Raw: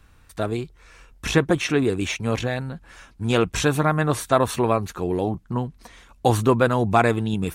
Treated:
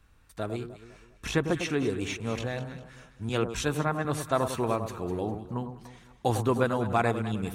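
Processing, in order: echo whose repeats swap between lows and highs 101 ms, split 1.2 kHz, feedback 62%, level -8 dB; 3.29–4.05 s: three bands expanded up and down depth 70%; trim -8 dB

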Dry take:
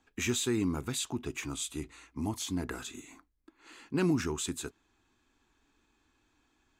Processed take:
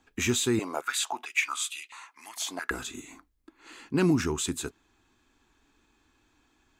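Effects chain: 0.59–2.71 s: step-sequenced high-pass 4.5 Hz 630–2700 Hz; trim +4.5 dB

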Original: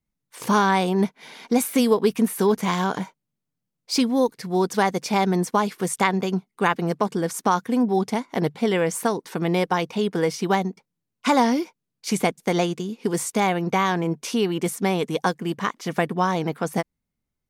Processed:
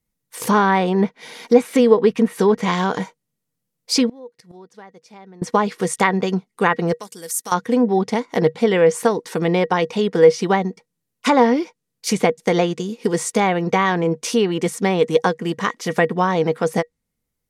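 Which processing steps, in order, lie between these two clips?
6.93–7.52 s: pre-emphasis filter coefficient 0.9; low-pass that closes with the level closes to 2.5 kHz, closed at -15.5 dBFS; treble shelf 7 kHz +10 dB; small resonant body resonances 480/1900 Hz, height 11 dB, ringing for 90 ms; 4.09–5.42 s: inverted gate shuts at -23 dBFS, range -25 dB; trim +3 dB

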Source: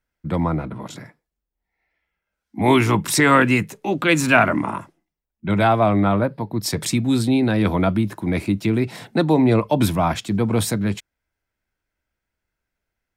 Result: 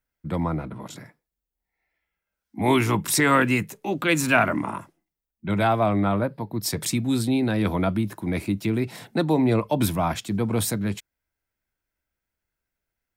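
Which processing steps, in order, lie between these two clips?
treble shelf 11 kHz +10.5 dB; trim -4.5 dB

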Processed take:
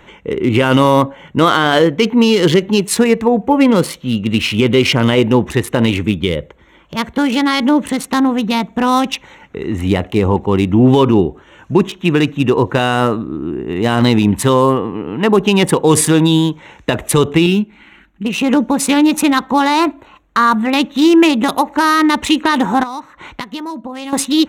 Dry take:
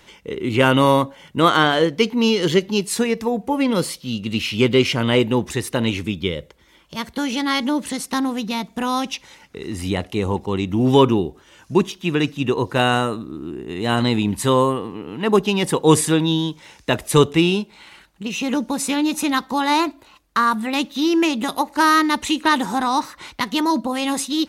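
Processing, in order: local Wiener filter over 9 samples; 17.46–18.25 s: graphic EQ 125/250/500/1000/4000/8000 Hz -9/+7/-11/-8/-5/-6 dB; 22.83–24.13 s: compression 6:1, threshold -33 dBFS, peak gain reduction 16.5 dB; loudness maximiser +10 dB; trim -1 dB

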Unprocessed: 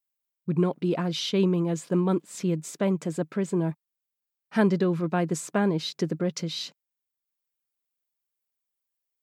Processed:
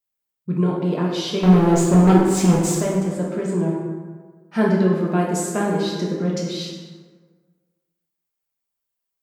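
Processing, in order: bass shelf 290 Hz +4.5 dB; hum notches 50/100/150/200/250/300/350 Hz; 1.43–2.79 s: waveshaping leveller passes 3; 5.05–5.72 s: treble shelf 7.3 kHz +10 dB; plate-style reverb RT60 1.5 s, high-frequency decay 0.55×, DRR -3 dB; trim -1 dB

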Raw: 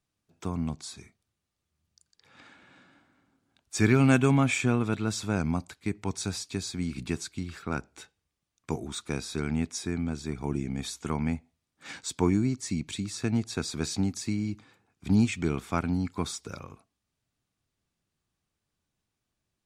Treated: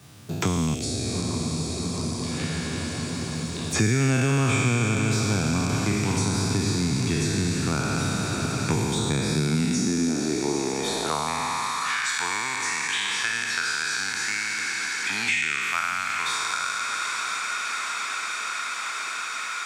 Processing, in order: spectral sustain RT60 2.95 s; 0.74–3.76 s: static phaser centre 420 Hz, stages 4; echo that smears into a reverb 789 ms, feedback 56%, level -12.5 dB; high-pass sweep 110 Hz -> 1.7 kHz, 9.10–12.28 s; three bands compressed up and down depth 100%

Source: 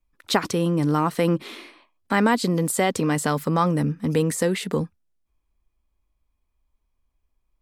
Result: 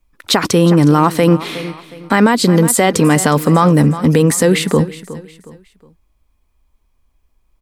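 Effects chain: on a send: feedback delay 364 ms, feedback 35%, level -17 dB; on the sum: loudness maximiser +13 dB; trim -1 dB

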